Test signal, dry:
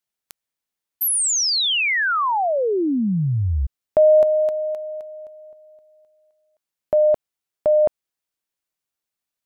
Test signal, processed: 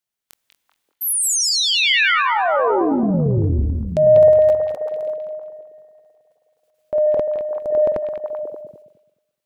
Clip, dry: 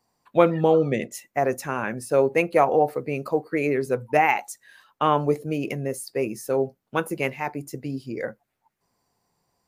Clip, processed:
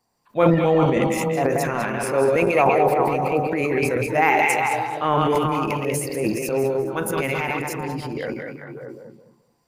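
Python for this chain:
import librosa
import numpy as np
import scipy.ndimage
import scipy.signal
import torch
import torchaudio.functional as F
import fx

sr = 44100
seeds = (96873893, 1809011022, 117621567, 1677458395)

y = fx.reverse_delay_fb(x, sr, ms=107, feedback_pct=45, wet_db=-5)
y = fx.transient(y, sr, attack_db=-4, sustain_db=10)
y = fx.echo_stepped(y, sr, ms=193, hz=2800.0, octaves=-1.4, feedback_pct=70, wet_db=0.0)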